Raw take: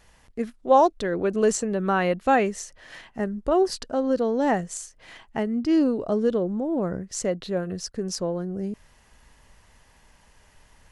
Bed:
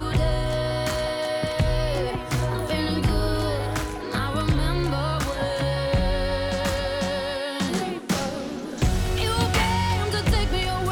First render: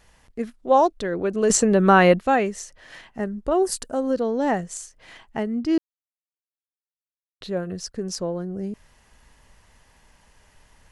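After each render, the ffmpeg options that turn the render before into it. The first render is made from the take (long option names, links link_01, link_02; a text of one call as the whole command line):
ffmpeg -i in.wav -filter_complex "[0:a]asettb=1/sr,asplit=3[link_01][link_02][link_03];[link_01]atrim=end=3.624[link_04];[link_02]atrim=start=3.62:end=4.11,asetpts=PTS-STARTPTS,afade=type=in:duration=0.004:curve=qsin,afade=type=out:start_time=0.486:duration=0.004:curve=qsin,highshelf=frequency=6500:width_type=q:width=1.5:gain=10.5[link_05];[link_03]atrim=start=4.106[link_06];[link_04][link_05]acrossfade=duration=0.004:curve1=hsin:curve2=qsin[link_07];[link_07][link_06]acrossfade=duration=0.004:curve1=qsin:curve2=hsin,asplit=5[link_08][link_09][link_10][link_11][link_12];[link_08]atrim=end=1.502[link_13];[link_09]atrim=start=1.498:end=2.212,asetpts=PTS-STARTPTS,volume=8.5dB[link_14];[link_10]atrim=start=2.208:end=5.78,asetpts=PTS-STARTPTS,afade=type=out:start_time=3.568:duration=0.004:curve=hsin[link_15];[link_11]atrim=start=5.78:end=7.41,asetpts=PTS-STARTPTS,volume=0[link_16];[link_12]atrim=start=7.41,asetpts=PTS-STARTPTS,afade=type=in:duration=0.004:curve=hsin[link_17];[link_13][link_14]acrossfade=duration=0.004:curve1=hsin:curve2=hsin[link_18];[link_15][link_16][link_17]concat=n=3:v=0:a=1[link_19];[link_18][link_19]acrossfade=duration=0.004:curve1=hsin:curve2=hsin" out.wav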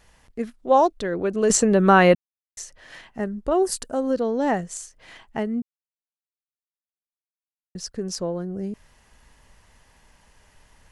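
ffmpeg -i in.wav -filter_complex "[0:a]asplit=5[link_01][link_02][link_03][link_04][link_05];[link_01]atrim=end=2.15,asetpts=PTS-STARTPTS,afade=type=out:start_time=2.146:duration=0.004:curve=hsin[link_06];[link_02]atrim=start=2.15:end=2.57,asetpts=PTS-STARTPTS,volume=0[link_07];[link_03]atrim=start=2.57:end=5.62,asetpts=PTS-STARTPTS,afade=type=in:duration=0.004:curve=hsin,afade=type=out:start_time=3.046:duration=0.004:curve=hsin[link_08];[link_04]atrim=start=5.62:end=7.75,asetpts=PTS-STARTPTS,volume=0[link_09];[link_05]atrim=start=7.75,asetpts=PTS-STARTPTS,afade=type=in:duration=0.004:curve=hsin[link_10];[link_06][link_07][link_08][link_09][link_10]concat=n=5:v=0:a=1" out.wav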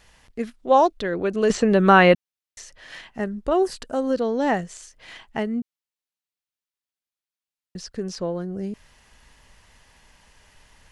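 ffmpeg -i in.wav -filter_complex "[0:a]acrossover=split=4000[link_01][link_02];[link_02]acompressor=threshold=-44dB:ratio=4:attack=1:release=60[link_03];[link_01][link_03]amix=inputs=2:normalize=0,equalizer=frequency=3400:width=0.58:gain=5" out.wav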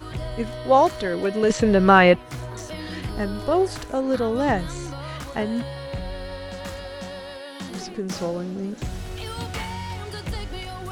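ffmpeg -i in.wav -i bed.wav -filter_complex "[1:a]volume=-9dB[link_01];[0:a][link_01]amix=inputs=2:normalize=0" out.wav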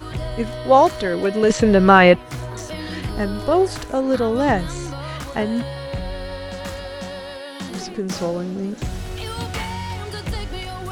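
ffmpeg -i in.wav -af "volume=3.5dB,alimiter=limit=-1dB:level=0:latency=1" out.wav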